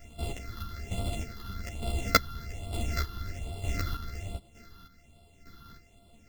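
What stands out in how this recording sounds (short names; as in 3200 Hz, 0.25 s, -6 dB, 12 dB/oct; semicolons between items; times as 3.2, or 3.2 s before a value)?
a buzz of ramps at a fixed pitch in blocks of 64 samples; phasing stages 6, 1.2 Hz, lowest notch 610–1700 Hz; chopped level 1.1 Hz, depth 60%, duty 35%; a shimmering, thickened sound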